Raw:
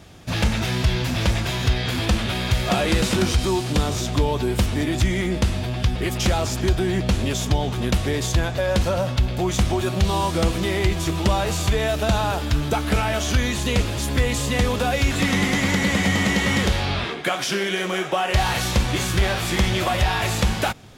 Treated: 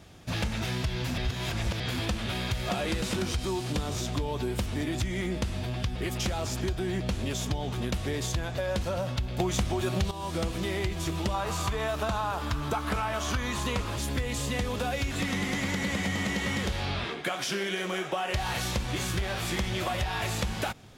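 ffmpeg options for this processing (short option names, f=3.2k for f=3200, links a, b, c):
-filter_complex "[0:a]asettb=1/sr,asplit=3[a][b][c];[a]atrim=end=11.344[d];[b]atrim=start=11.34:end=13.96,asetpts=PTS-STARTPTS,afade=t=in:d=0.004:c=qsin,afade=t=out:st=2.616:d=0.004:c=qsin,equalizer=f=1.1k:w=1.9:g=11.5[e];[c]atrim=start=13.956[f];[d][e]acrossfade=d=0.004:c1=hsin:c2=qsin[g];[g][f]acrossfade=d=0.004:c1=qsin:c2=hsin,asplit=5[h][i][j][k][l];[h]atrim=end=1.182[m];[i]atrim=start=1.178:end=1.802,asetpts=PTS-STARTPTS,areverse[n];[j]atrim=start=1.798:end=9.402[o];[k]atrim=start=9.398:end=10.112,asetpts=PTS-STARTPTS,volume=12dB[p];[l]atrim=start=10.108[q];[m][n]acrossfade=d=0.004:c1=hsin:c2=hsin[r];[r][o]acrossfade=d=0.004:c1=hsin:c2=hsin[s];[s][p]acrossfade=d=0.004:c1=hsin:c2=hsin[t];[t][q]acrossfade=d=0.004:c1=hsin:c2=hsin,acompressor=threshold=-20dB:ratio=6,volume=-6dB"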